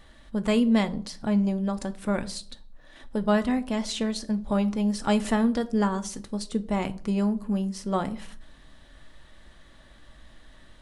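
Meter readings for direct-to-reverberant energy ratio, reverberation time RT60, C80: 9.5 dB, 0.55 s, 22.5 dB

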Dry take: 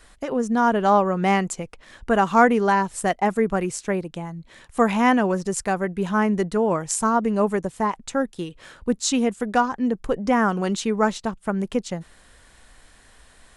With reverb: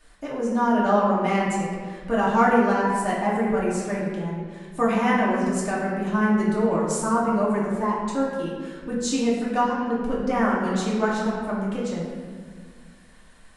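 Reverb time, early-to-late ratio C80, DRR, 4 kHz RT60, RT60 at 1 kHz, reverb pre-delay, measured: 1.8 s, 2.5 dB, −7.0 dB, 1.1 s, 1.6 s, 3 ms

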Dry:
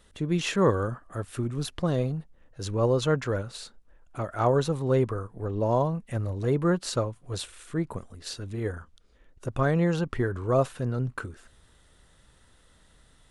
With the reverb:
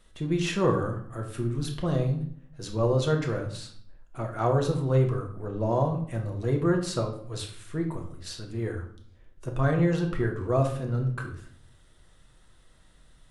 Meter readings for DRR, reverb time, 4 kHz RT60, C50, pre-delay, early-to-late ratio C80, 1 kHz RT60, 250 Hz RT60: 1.5 dB, 0.55 s, 0.45 s, 8.5 dB, 3 ms, 12.0 dB, 0.50 s, 0.80 s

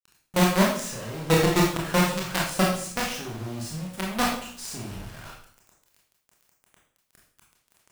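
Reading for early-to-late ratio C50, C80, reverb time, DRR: 3.0 dB, 7.5 dB, 0.55 s, −3.0 dB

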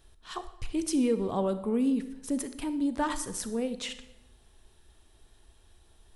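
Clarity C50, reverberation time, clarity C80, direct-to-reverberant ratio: 12.0 dB, 0.90 s, 14.5 dB, 11.0 dB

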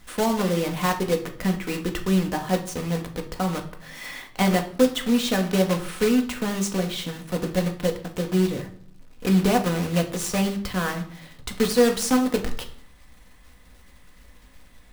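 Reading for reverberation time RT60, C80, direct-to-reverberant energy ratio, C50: 0.60 s, 15.5 dB, 3.5 dB, 11.5 dB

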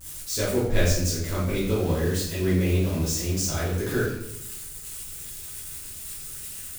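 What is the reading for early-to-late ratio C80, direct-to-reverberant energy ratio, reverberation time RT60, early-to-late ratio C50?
5.5 dB, −9.5 dB, 0.80 s, 2.0 dB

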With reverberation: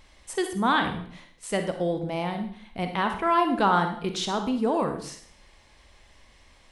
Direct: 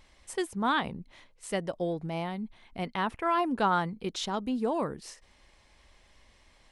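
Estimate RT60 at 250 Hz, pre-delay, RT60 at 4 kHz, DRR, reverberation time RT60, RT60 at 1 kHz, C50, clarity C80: 0.60 s, 37 ms, 0.55 s, 5.5 dB, 0.55 s, 0.55 s, 7.5 dB, 11.5 dB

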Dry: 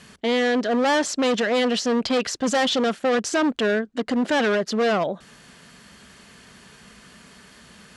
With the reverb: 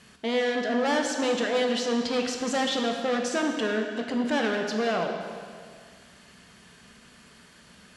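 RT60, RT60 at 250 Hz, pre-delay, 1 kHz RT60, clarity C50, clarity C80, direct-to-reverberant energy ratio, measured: 2.0 s, 2.0 s, 13 ms, 2.0 s, 4.5 dB, 5.5 dB, 2.5 dB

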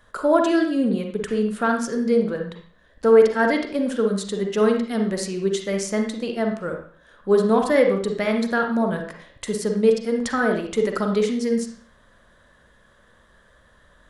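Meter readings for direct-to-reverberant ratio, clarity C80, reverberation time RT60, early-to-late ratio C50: 3.0 dB, 9.5 dB, 0.45 s, 5.0 dB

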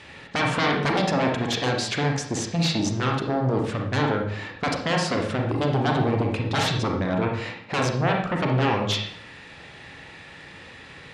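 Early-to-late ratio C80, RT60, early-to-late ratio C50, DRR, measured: 8.0 dB, 0.60 s, 3.5 dB, 1.0 dB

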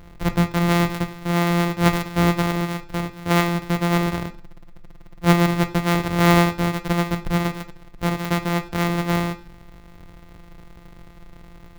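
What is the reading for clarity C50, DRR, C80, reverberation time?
15.5 dB, 9.0 dB, 20.5 dB, 0.45 s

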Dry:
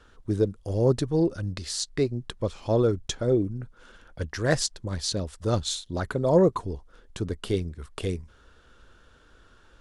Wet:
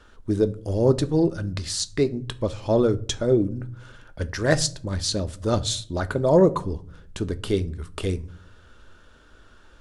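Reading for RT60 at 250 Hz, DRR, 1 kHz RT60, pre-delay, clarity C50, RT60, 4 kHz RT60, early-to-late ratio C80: 0.85 s, 11.0 dB, 0.40 s, 3 ms, 20.5 dB, 0.50 s, 0.30 s, 25.0 dB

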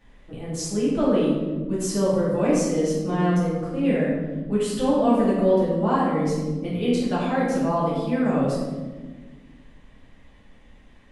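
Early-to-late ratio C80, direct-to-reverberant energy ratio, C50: 2.0 dB, −9.0 dB, −0.5 dB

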